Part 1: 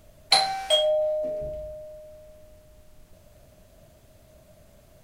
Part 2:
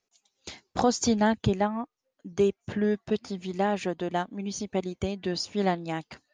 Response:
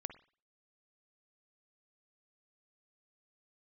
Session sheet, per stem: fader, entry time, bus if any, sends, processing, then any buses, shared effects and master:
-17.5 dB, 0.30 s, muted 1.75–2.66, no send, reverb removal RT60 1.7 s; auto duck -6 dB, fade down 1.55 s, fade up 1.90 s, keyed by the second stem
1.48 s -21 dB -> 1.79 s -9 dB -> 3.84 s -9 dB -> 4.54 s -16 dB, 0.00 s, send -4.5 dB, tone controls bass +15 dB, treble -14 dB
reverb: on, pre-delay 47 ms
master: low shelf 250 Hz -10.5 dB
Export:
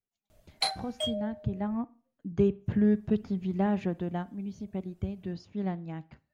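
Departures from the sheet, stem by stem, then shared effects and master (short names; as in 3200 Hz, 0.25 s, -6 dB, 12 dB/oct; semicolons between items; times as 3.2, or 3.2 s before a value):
stem 1 -17.5 dB -> -7.0 dB; master: missing low shelf 250 Hz -10.5 dB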